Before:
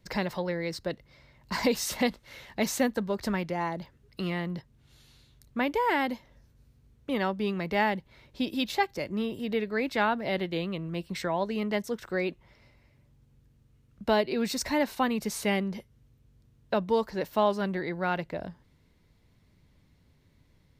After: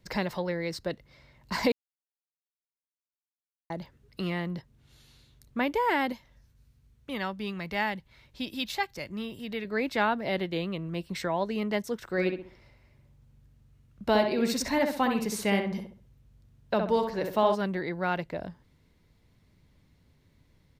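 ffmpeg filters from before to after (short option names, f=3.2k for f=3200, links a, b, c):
-filter_complex "[0:a]asettb=1/sr,asplit=3[a][b][c];[a]atrim=end=6.124[d];[b]atrim=start=6.12:end=9.65,asetpts=PTS-STARTPTS,afade=t=in:d=0.004:c=qsin,afade=t=out:st=3.526:d=0.004:c=qsin,equalizer=f=400:t=o:w=2.4:g=-7.5[e];[c]atrim=start=9.646[f];[d][e]acrossfade=d=0.004:c1=hsin:c2=qsin[g];[g][f]acrossfade=d=0.004:c1=qsin:c2=hsin,asplit=3[h][i][j];[h]afade=t=out:st=12.16:d=0.02[k];[i]asplit=2[l][m];[m]adelay=65,lowpass=f=2.3k:p=1,volume=-4.5dB,asplit=2[n][o];[o]adelay=65,lowpass=f=2.3k:p=1,volume=0.37,asplit=2[p][q];[q]adelay=65,lowpass=f=2.3k:p=1,volume=0.37,asplit=2[r][s];[s]adelay=65,lowpass=f=2.3k:p=1,volume=0.37,asplit=2[t][u];[u]adelay=65,lowpass=f=2.3k:p=1,volume=0.37[v];[l][n][p][r][t][v]amix=inputs=6:normalize=0,afade=t=in:st=12.16:d=0.02,afade=t=out:st=17.54:d=0.02[w];[j]afade=t=in:st=17.54:d=0.02[x];[k][w][x]amix=inputs=3:normalize=0,asplit=3[y][z][aa];[y]atrim=end=1.72,asetpts=PTS-STARTPTS,afade=t=out:st=1.716:d=0.004:c=hsin[ab];[z]atrim=start=1.72:end=3.7,asetpts=PTS-STARTPTS,volume=0[ac];[aa]atrim=start=3.7,asetpts=PTS-STARTPTS,afade=t=in:d=0.004:c=hsin[ad];[ab][ac][ad]concat=n=3:v=0:a=1"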